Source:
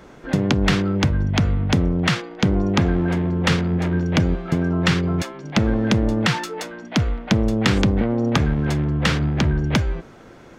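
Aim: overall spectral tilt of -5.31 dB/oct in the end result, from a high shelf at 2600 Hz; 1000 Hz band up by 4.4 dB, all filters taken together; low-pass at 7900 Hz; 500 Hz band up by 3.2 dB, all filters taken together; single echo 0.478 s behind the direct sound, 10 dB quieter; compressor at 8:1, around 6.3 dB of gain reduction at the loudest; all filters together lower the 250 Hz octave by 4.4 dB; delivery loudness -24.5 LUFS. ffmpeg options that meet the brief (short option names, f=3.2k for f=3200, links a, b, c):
-af "lowpass=7.9k,equalizer=f=250:t=o:g=-8.5,equalizer=f=500:t=o:g=6,equalizer=f=1k:t=o:g=5,highshelf=f=2.6k:g=-4,acompressor=threshold=-21dB:ratio=8,aecho=1:1:478:0.316,volume=1.5dB"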